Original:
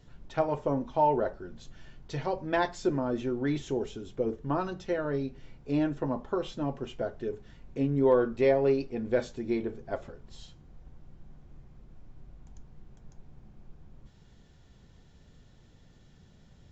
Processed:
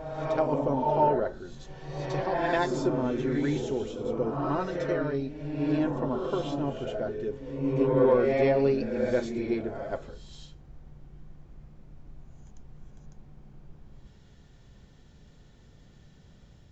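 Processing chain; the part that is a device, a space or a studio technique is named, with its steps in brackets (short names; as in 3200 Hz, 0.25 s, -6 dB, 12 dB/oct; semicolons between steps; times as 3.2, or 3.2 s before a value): reverse reverb (reverse; reverb RT60 1.2 s, pre-delay 67 ms, DRR 1 dB; reverse)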